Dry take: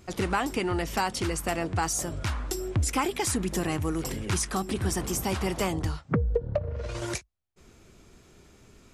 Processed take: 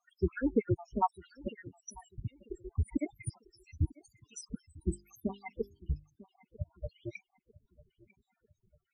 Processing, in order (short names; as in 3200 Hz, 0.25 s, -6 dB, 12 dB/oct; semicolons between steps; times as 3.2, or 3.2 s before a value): random spectral dropouts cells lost 80%; 3.93–4.35 ring modulator 1200 Hz; in parallel at -3.5 dB: bit-crush 5-bit; 2.19–2.85 on the sum: resonator 420 Hz, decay 0.17 s, harmonics all, mix 50%; darkening echo 0.947 s, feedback 41%, low-pass 4100 Hz, level -15 dB; modulation noise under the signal 35 dB; loudest bins only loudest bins 8; 4.86–6.16 notches 50/100/150/200/250/300/350/400 Hz; upward expander 1.5:1, over -44 dBFS